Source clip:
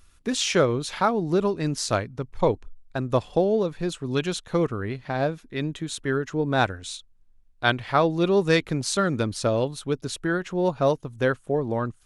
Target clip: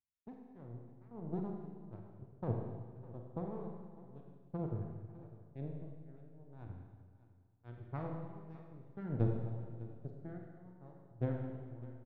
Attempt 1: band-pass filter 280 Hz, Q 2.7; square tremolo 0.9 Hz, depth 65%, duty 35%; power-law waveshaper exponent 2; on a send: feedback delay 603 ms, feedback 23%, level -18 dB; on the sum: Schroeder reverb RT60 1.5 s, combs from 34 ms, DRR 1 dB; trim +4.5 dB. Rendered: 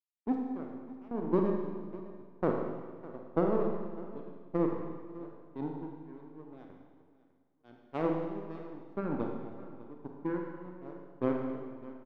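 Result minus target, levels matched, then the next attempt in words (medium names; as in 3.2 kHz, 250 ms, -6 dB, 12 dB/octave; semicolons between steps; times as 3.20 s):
125 Hz band -10.5 dB
band-pass filter 110 Hz, Q 2.7; square tremolo 0.9 Hz, depth 65%, duty 35%; power-law waveshaper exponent 2; on a send: feedback delay 603 ms, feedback 23%, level -18 dB; on the sum: Schroeder reverb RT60 1.5 s, combs from 34 ms, DRR 1 dB; trim +4.5 dB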